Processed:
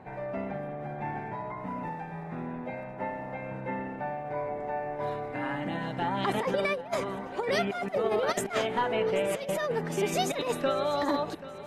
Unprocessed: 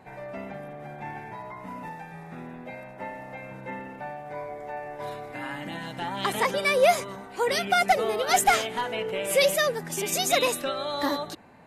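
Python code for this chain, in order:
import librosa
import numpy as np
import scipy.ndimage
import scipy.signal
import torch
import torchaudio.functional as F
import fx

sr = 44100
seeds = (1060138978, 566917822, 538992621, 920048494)

p1 = fx.lowpass(x, sr, hz=1400.0, slope=6)
p2 = fx.over_compress(p1, sr, threshold_db=-28.0, ratio=-0.5)
p3 = p2 + fx.echo_feedback(p2, sr, ms=784, feedback_pct=47, wet_db=-16.0, dry=0)
y = p3 * librosa.db_to_amplitude(1.0)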